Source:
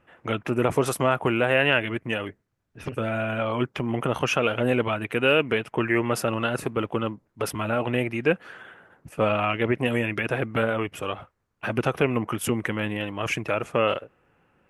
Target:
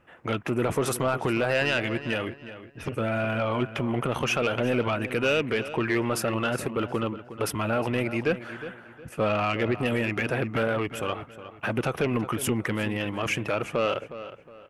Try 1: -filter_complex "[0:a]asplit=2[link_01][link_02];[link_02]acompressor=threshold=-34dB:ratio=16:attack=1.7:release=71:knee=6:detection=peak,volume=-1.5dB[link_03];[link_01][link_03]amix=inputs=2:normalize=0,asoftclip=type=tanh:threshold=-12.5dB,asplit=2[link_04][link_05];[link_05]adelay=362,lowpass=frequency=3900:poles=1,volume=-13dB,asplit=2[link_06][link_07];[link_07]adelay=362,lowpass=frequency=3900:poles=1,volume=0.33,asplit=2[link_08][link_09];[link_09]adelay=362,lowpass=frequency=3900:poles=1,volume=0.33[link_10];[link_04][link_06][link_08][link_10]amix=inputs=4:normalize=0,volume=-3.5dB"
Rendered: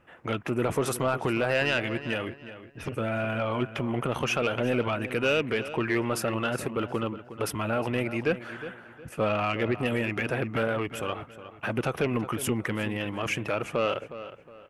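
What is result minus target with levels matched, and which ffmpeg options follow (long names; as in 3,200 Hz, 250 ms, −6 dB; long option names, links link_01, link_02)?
downward compressor: peak gain reduction +10 dB
-filter_complex "[0:a]asplit=2[link_01][link_02];[link_02]acompressor=threshold=-23.5dB:ratio=16:attack=1.7:release=71:knee=6:detection=peak,volume=-1.5dB[link_03];[link_01][link_03]amix=inputs=2:normalize=0,asoftclip=type=tanh:threshold=-12.5dB,asplit=2[link_04][link_05];[link_05]adelay=362,lowpass=frequency=3900:poles=1,volume=-13dB,asplit=2[link_06][link_07];[link_07]adelay=362,lowpass=frequency=3900:poles=1,volume=0.33,asplit=2[link_08][link_09];[link_09]adelay=362,lowpass=frequency=3900:poles=1,volume=0.33[link_10];[link_04][link_06][link_08][link_10]amix=inputs=4:normalize=0,volume=-3.5dB"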